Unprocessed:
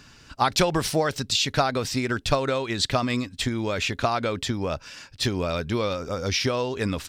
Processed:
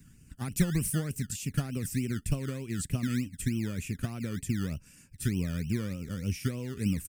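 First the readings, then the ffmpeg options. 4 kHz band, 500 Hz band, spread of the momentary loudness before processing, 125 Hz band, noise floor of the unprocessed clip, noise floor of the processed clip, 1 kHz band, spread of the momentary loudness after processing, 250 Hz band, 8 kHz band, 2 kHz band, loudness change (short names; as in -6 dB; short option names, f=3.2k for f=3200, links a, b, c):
-19.0 dB, -16.5 dB, 5 LU, -0.5 dB, -52 dBFS, -56 dBFS, -23.0 dB, 6 LU, -3.0 dB, -5.5 dB, -13.0 dB, -7.5 dB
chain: -filter_complex "[0:a]firequalizer=gain_entry='entry(120,0);entry(180,4);entry(280,-5);entry(580,-20);entry(830,-25);entry(2500,-15);entry(3700,-28);entry(8700,4)':delay=0.05:min_phase=1,acrossover=split=340|4200[a][b][c];[a]acrusher=samples=22:mix=1:aa=0.000001:lfo=1:lforange=13.2:lforate=3.3[d];[d][b][c]amix=inputs=3:normalize=0,volume=-1.5dB"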